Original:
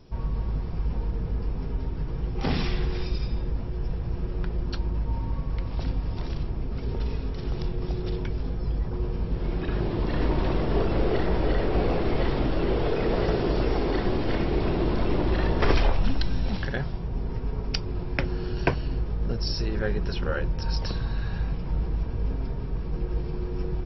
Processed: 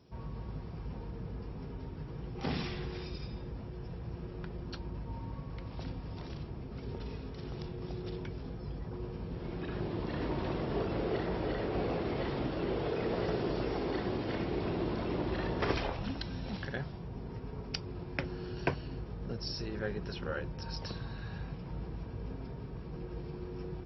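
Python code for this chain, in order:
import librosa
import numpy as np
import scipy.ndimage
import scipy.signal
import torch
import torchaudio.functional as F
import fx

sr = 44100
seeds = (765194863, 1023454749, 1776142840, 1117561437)

y = scipy.signal.sosfilt(scipy.signal.butter(2, 82.0, 'highpass', fs=sr, output='sos'), x)
y = y * 10.0 ** (-7.5 / 20.0)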